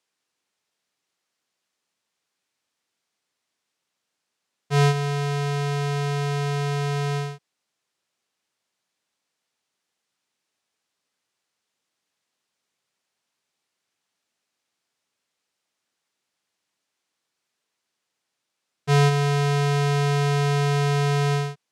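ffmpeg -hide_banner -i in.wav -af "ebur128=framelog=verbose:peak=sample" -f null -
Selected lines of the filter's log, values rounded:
Integrated loudness:
  I:         -22.9 LUFS
  Threshold: -33.1 LUFS
Loudness range:
  LRA:        10.8 LU
  Threshold: -46.1 LUFS
  LRA low:   -32.9 LUFS
  LRA high:  -22.1 LUFS
Sample peak:
  Peak:       -6.4 dBFS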